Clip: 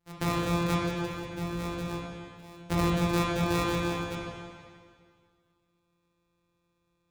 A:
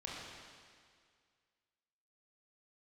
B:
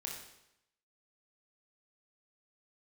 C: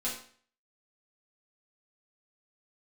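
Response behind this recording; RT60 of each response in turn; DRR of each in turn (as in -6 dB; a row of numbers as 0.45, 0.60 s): A; 2.0, 0.85, 0.50 s; -5.0, -1.5, -7.5 dB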